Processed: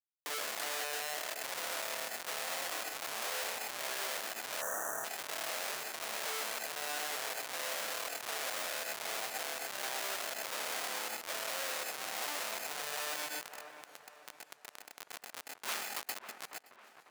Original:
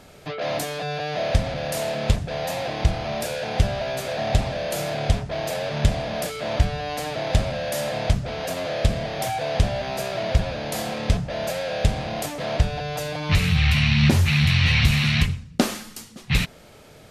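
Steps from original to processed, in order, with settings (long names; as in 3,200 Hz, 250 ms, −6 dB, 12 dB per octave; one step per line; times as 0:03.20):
phase distortion by the signal itself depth 0.3 ms
compressor whose output falls as the input rises −32 dBFS, ratio −1
comparator with hysteresis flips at −26 dBFS
high-pass filter 930 Hz 12 dB per octave
delay with a low-pass on its return 548 ms, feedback 40%, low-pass 2,000 Hz, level −19 dB
on a send at −9 dB: convolution reverb, pre-delay 124 ms
on the sum: time-frequency box erased 0:04.61–0:05.05, 1,900–5,700 Hz
high-shelf EQ 3,700 Hz +6 dB
brickwall limiter −29 dBFS, peak gain reduction 10.5 dB
feedback echo with a swinging delay time 576 ms, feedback 58%, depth 168 cents, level −23 dB
level +6 dB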